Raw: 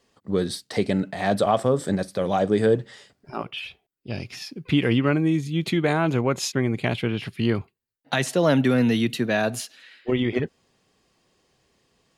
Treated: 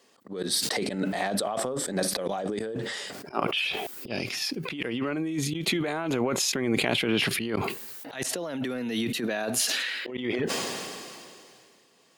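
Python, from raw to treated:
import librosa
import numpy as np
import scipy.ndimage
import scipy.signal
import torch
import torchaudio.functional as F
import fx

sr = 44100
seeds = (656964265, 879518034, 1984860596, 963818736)

y = scipy.signal.sosfilt(scipy.signal.butter(2, 250.0, 'highpass', fs=sr, output='sos'), x)
y = fx.high_shelf(y, sr, hz=9400.0, db=5.5)
y = fx.over_compress(y, sr, threshold_db=-29.0, ratio=-1.0)
y = fx.auto_swell(y, sr, attack_ms=111.0)
y = fx.sustainer(y, sr, db_per_s=25.0)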